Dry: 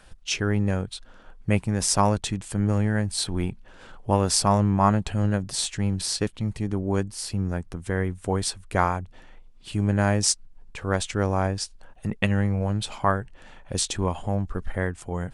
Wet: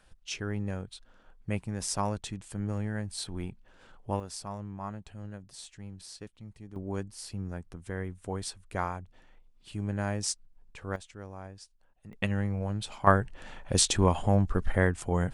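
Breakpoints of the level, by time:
−10 dB
from 0:04.20 −19 dB
from 0:06.76 −10 dB
from 0:10.96 −20 dB
from 0:12.13 −7 dB
from 0:13.07 +2 dB

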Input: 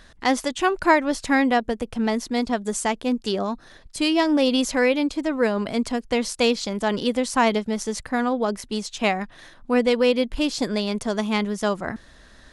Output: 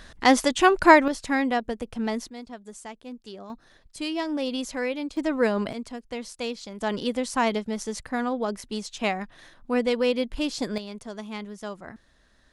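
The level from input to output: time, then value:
+3 dB
from 0:01.08 −5 dB
from 0:02.29 −16.5 dB
from 0:03.50 −9 dB
from 0:05.17 −1.5 dB
from 0:05.73 −11.5 dB
from 0:06.81 −4.5 dB
from 0:10.78 −12.5 dB

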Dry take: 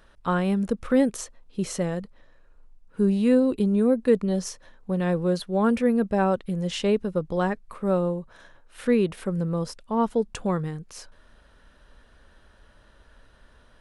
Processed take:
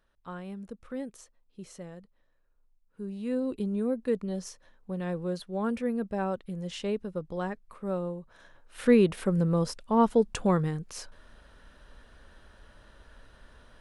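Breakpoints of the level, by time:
0:03.08 −16.5 dB
0:03.48 −8.5 dB
0:08.17 −8.5 dB
0:08.87 +1 dB

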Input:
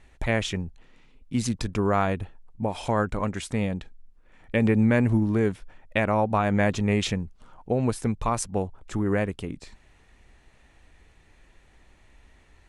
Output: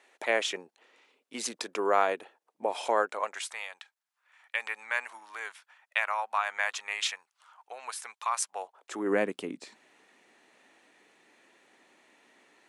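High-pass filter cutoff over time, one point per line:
high-pass filter 24 dB per octave
0:02.96 390 Hz
0:03.60 950 Hz
0:08.45 950 Hz
0:09.17 250 Hz

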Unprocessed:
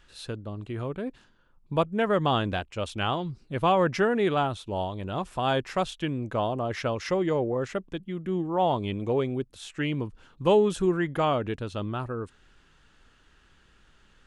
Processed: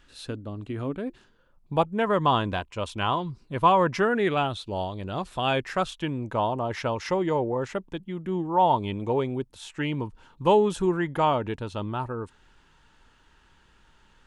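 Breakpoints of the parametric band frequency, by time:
parametric band +11 dB 0.21 octaves
0:00.92 270 Hz
0:01.96 1,000 Hz
0:03.98 1,000 Hz
0:04.66 4,600 Hz
0:05.23 4,600 Hz
0:06.02 910 Hz

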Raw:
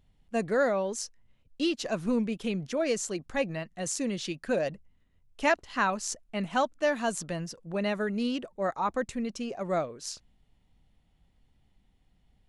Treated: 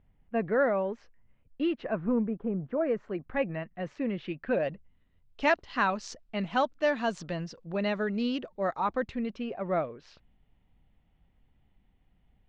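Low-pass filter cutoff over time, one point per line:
low-pass filter 24 dB per octave
0:01.78 2,400 Hz
0:02.50 1,200 Hz
0:03.32 2,500 Hz
0:04.24 2,500 Hz
0:05.49 4,900 Hz
0:08.68 4,900 Hz
0:09.58 3,000 Hz

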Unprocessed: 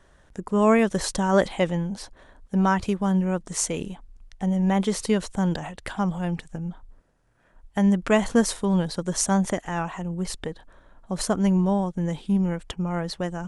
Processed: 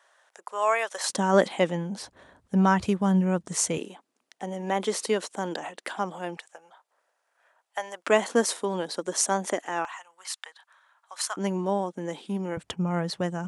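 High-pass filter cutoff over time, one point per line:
high-pass filter 24 dB per octave
640 Hz
from 0:01.10 190 Hz
from 0:01.98 75 Hz
from 0:03.78 280 Hz
from 0:06.37 600 Hz
from 0:08.07 280 Hz
from 0:09.85 980 Hz
from 0:11.37 250 Hz
from 0:12.57 94 Hz

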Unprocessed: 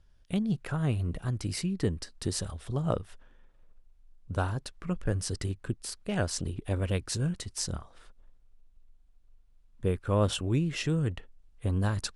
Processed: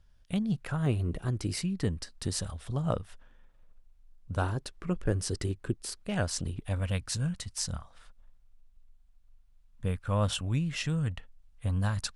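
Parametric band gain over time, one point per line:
parametric band 370 Hz 0.66 octaves
−6 dB
from 0:00.86 +5 dB
from 0:01.57 −5.5 dB
from 0:04.42 +4.5 dB
from 0:06.01 −5.5 dB
from 0:06.61 −15 dB

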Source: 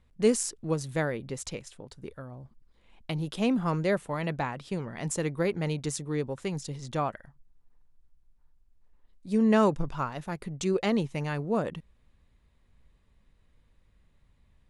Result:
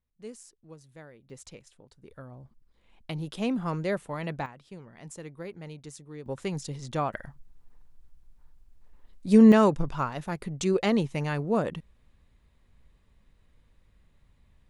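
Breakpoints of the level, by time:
−19.5 dB
from 0:01.30 −10 dB
from 0:02.11 −2.5 dB
from 0:04.46 −12 dB
from 0:06.26 +0.5 dB
from 0:07.14 +8.5 dB
from 0:09.52 +2 dB

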